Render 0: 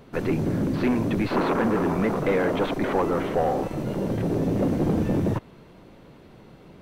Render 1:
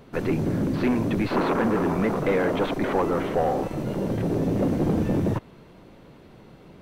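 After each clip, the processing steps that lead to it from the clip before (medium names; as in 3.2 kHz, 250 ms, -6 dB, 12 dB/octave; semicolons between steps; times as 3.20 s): no audible change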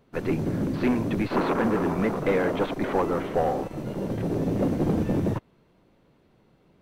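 upward expansion 1.5:1, over -45 dBFS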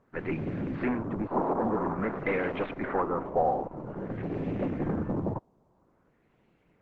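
LFO low-pass sine 0.5 Hz 820–2500 Hz; trim -6 dB; Opus 12 kbps 48 kHz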